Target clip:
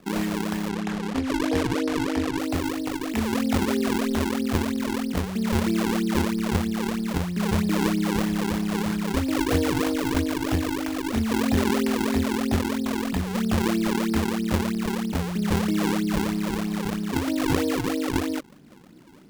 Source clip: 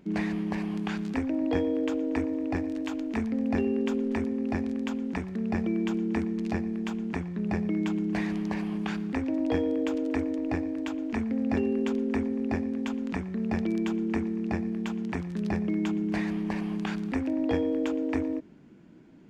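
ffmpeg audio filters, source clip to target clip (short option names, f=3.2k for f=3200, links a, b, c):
-filter_complex "[0:a]acrossover=split=150|1100|3200[a][b][c][d];[a]dynaudnorm=f=410:g=17:m=8dB[e];[e][b][c][d]amix=inputs=4:normalize=0,acrusher=samples=42:mix=1:aa=0.000001:lfo=1:lforange=67.2:lforate=3.1,asettb=1/sr,asplit=3[f][g][h];[f]atrim=end=0.694[i];[g]atrim=start=0.69:end=2.38,asetpts=PTS-STARTPTS,afade=t=in:d=0.004:c=qsin,afade=t=out:st=1.686:d=0.004:c=qsin,adynamicsmooth=sensitivity=5.5:basefreq=4.5k[j];[h]atrim=start=2.376[k];[i][j]acrossfade=d=0.004:c1=hsin:c2=qsin[l];[l][k]acrossfade=d=0.004:c1=qsin:c2=hsin,volume=3dB"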